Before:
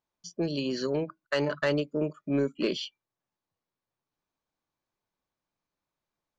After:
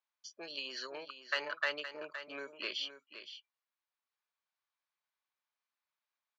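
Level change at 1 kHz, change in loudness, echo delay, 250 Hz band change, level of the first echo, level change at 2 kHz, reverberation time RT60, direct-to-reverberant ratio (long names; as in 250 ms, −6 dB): −5.0 dB, −9.5 dB, 517 ms, −25.0 dB, −11.0 dB, −1.0 dB, no reverb audible, no reverb audible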